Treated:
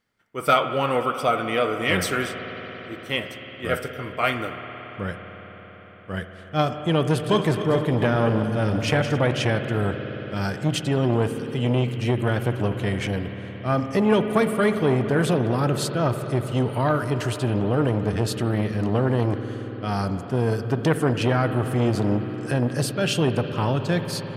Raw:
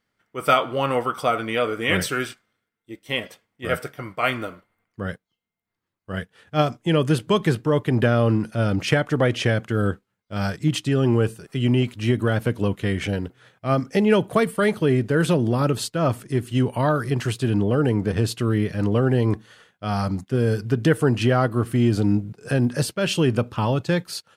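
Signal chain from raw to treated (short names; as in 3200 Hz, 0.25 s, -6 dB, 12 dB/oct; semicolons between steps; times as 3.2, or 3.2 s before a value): 7.09–9.19 regenerating reverse delay 0.134 s, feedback 43%, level -9 dB; reverb RT60 5.4 s, pre-delay 56 ms, DRR 8 dB; core saturation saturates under 670 Hz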